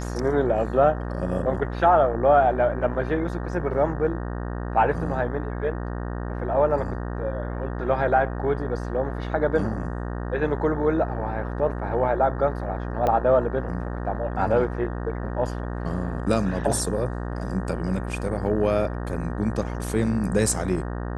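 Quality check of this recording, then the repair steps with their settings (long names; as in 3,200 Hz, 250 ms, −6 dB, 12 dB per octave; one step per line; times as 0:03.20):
mains buzz 60 Hz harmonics 31 −30 dBFS
0:13.07: click −13 dBFS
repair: click removal
hum removal 60 Hz, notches 31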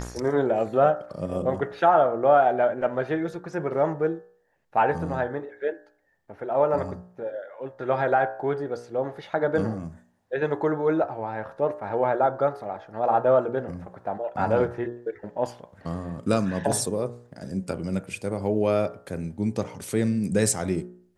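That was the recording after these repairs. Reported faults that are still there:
0:13.07: click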